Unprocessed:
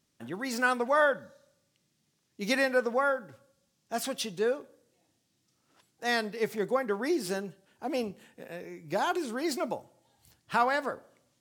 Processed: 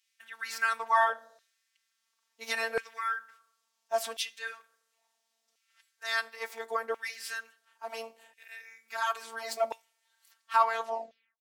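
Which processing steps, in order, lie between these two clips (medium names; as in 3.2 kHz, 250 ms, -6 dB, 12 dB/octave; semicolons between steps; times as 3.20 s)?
tape stop on the ending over 0.75 s; robot voice 226 Hz; LFO high-pass saw down 0.72 Hz 610–2400 Hz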